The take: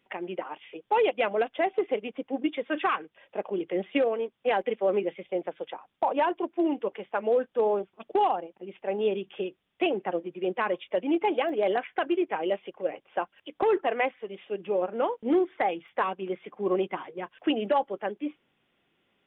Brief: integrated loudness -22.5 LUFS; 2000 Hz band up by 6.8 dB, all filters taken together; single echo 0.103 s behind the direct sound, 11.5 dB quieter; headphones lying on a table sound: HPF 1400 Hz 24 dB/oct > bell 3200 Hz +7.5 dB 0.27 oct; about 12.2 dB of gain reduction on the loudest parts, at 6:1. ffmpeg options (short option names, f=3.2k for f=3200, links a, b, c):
-af "equalizer=f=2k:t=o:g=8.5,acompressor=threshold=-32dB:ratio=6,highpass=f=1.4k:w=0.5412,highpass=f=1.4k:w=1.3066,equalizer=f=3.2k:t=o:w=0.27:g=7.5,aecho=1:1:103:0.266,volume=20dB"